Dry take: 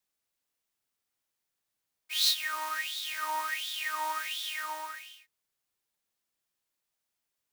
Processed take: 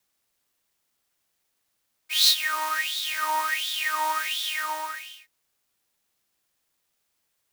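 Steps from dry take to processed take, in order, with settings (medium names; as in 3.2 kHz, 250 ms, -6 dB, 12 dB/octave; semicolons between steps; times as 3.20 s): companded quantiser 8-bit; trim +7 dB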